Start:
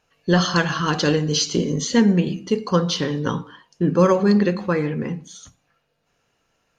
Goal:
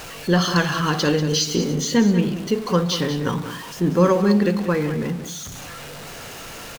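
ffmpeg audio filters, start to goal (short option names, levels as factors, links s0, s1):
-af "aeval=exprs='val(0)+0.5*0.0355*sgn(val(0))':c=same,aecho=1:1:190:0.266,volume=0.841"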